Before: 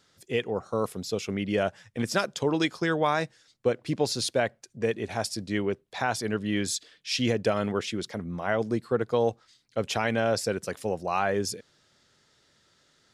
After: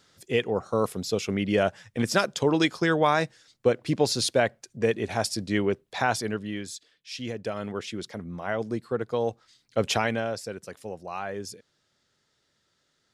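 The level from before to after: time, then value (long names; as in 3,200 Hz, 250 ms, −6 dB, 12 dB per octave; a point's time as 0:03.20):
0:06.12 +3 dB
0:06.70 −9 dB
0:07.20 −9 dB
0:08.00 −2.5 dB
0:09.26 −2.5 dB
0:09.90 +5 dB
0:10.38 −7.5 dB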